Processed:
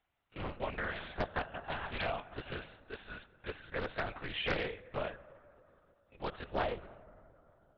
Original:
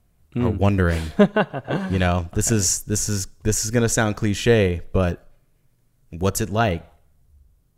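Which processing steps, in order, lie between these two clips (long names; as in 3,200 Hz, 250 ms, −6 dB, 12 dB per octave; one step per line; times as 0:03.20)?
spectral magnitudes quantised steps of 15 dB
high-pass filter 730 Hz 12 dB per octave, from 0:06.55 250 Hz
harmonic and percussive parts rebalanced percussive −5 dB
downward compressor 2 to 1, threshold −33 dBFS, peak gain reduction 8.5 dB
dense smooth reverb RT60 3 s, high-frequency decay 0.3×, DRR 15.5 dB
linear-prediction vocoder at 8 kHz whisper
highs frequency-modulated by the lows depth 0.82 ms
level −2 dB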